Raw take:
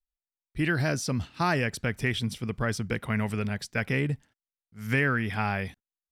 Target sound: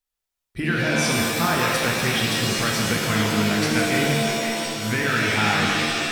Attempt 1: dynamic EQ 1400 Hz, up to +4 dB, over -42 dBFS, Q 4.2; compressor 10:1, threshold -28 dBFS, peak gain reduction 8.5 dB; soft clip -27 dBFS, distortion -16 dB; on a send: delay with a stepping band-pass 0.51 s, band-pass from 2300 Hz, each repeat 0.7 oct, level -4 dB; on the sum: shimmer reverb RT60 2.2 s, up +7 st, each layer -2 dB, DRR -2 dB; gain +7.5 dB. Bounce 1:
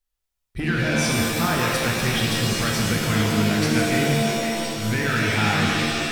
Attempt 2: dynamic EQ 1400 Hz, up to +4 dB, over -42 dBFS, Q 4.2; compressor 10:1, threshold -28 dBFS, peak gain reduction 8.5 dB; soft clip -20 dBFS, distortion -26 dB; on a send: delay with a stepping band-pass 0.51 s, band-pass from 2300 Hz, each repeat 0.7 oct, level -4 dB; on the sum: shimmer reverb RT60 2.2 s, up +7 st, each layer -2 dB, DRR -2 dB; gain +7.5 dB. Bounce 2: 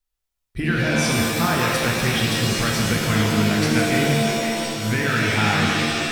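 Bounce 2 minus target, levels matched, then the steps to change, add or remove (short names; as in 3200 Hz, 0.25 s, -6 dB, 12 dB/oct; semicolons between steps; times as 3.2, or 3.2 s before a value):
125 Hz band +3.0 dB
add after compressor: low shelf 90 Hz -12 dB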